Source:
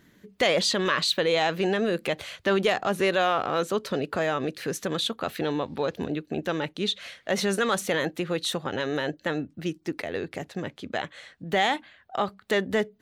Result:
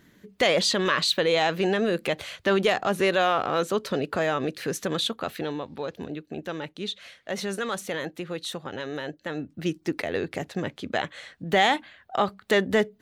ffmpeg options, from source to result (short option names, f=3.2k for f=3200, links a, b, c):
-af "volume=9dB,afade=t=out:st=5.03:d=0.59:silence=0.501187,afade=t=in:st=9.29:d=0.42:silence=0.398107"